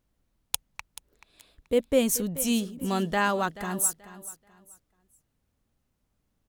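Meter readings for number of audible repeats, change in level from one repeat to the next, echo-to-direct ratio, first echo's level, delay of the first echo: 2, −11.5 dB, −15.0 dB, −15.5 dB, 432 ms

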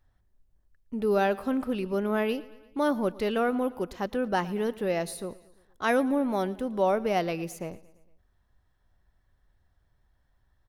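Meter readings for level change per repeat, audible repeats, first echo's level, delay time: −5.0 dB, 3, −20.5 dB, 114 ms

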